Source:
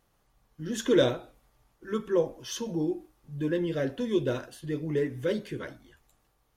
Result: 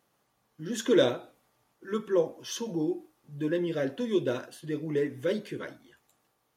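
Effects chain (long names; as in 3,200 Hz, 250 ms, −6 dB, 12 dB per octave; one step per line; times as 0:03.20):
high-pass filter 160 Hz 12 dB per octave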